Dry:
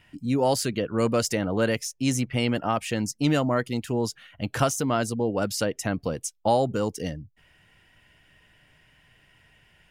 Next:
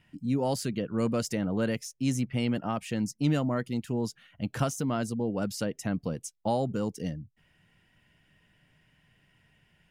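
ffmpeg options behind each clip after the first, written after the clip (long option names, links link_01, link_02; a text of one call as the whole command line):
ffmpeg -i in.wav -af "equalizer=frequency=180:width_type=o:width=1.3:gain=8.5,volume=-8dB" out.wav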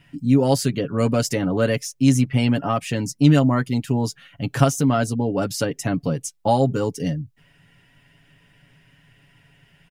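ffmpeg -i in.wav -af "aecho=1:1:7.2:0.65,volume=8dB" out.wav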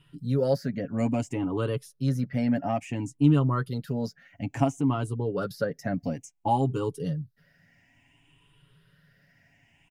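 ffmpeg -i in.wav -filter_complex "[0:a]afftfilt=real='re*pow(10,13/40*sin(2*PI*(0.64*log(max(b,1)*sr/1024/100)/log(2)-(0.58)*(pts-256)/sr)))':imag='im*pow(10,13/40*sin(2*PI*(0.64*log(max(b,1)*sr/1024/100)/log(2)-(0.58)*(pts-256)/sr)))':win_size=1024:overlap=0.75,acrossover=split=1900[link_01][link_02];[link_02]acompressor=threshold=-39dB:ratio=5[link_03];[link_01][link_03]amix=inputs=2:normalize=0,volume=-8.5dB" out.wav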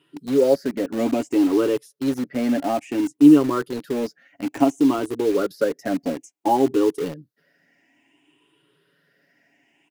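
ffmpeg -i in.wav -filter_complex "[0:a]highpass=frequency=330:width_type=q:width=3.9,asplit=2[link_01][link_02];[link_02]acrusher=bits=4:mix=0:aa=0.000001,volume=-6.5dB[link_03];[link_01][link_03]amix=inputs=2:normalize=0" out.wav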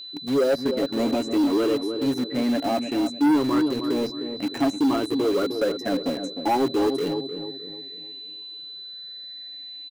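ffmpeg -i in.wav -filter_complex "[0:a]asplit=2[link_01][link_02];[link_02]adelay=306,lowpass=frequency=990:poles=1,volume=-8.5dB,asplit=2[link_03][link_04];[link_04]adelay=306,lowpass=frequency=990:poles=1,volume=0.42,asplit=2[link_05][link_06];[link_06]adelay=306,lowpass=frequency=990:poles=1,volume=0.42,asplit=2[link_07][link_08];[link_08]adelay=306,lowpass=frequency=990:poles=1,volume=0.42,asplit=2[link_09][link_10];[link_10]adelay=306,lowpass=frequency=990:poles=1,volume=0.42[link_11];[link_01][link_03][link_05][link_07][link_09][link_11]amix=inputs=6:normalize=0,aeval=exprs='val(0)+0.0158*sin(2*PI*4000*n/s)':channel_layout=same,asoftclip=type=tanh:threshold=-15.5dB" out.wav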